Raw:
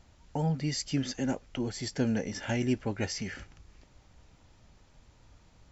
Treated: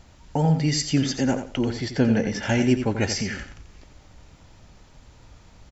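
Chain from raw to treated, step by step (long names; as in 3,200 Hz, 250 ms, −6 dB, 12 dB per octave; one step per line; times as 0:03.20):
0:01.70–0:02.41: low-pass filter 3,400 Hz → 5,800 Hz 12 dB per octave
repeating echo 87 ms, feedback 22%, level −9 dB
level +8.5 dB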